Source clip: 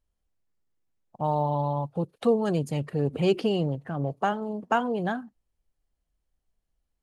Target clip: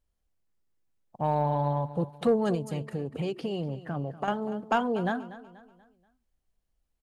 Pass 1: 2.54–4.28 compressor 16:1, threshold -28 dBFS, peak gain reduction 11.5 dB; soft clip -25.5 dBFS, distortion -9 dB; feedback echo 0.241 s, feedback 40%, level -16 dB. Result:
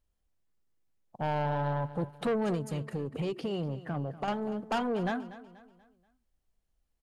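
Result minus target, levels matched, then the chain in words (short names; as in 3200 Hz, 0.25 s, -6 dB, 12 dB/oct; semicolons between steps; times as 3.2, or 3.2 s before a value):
soft clip: distortion +13 dB
2.54–4.28 compressor 16:1, threshold -28 dBFS, peak gain reduction 11.5 dB; soft clip -14 dBFS, distortion -21 dB; feedback echo 0.241 s, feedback 40%, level -16 dB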